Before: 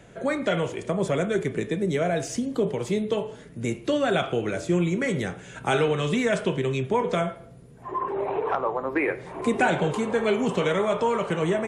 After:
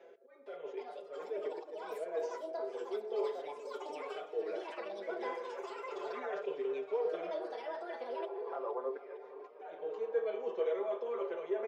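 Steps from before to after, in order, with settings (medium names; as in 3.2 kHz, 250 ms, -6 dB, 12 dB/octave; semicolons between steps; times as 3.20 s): steep low-pass 6.2 kHz 48 dB/octave; treble shelf 3.5 kHz -11 dB; reverse; compression 6:1, threshold -31 dBFS, peak gain reduction 13 dB; reverse; slow attack 732 ms; ever faster or slower copies 461 ms, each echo +7 st, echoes 2; ladder high-pass 420 Hz, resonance 65%; feedback delay 460 ms, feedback 58%, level -16.5 dB; on a send at -8 dB: reverberation RT60 0.30 s, pre-delay 3 ms; on the sum: endless flanger 5.5 ms +0.36 Hz; trim +5 dB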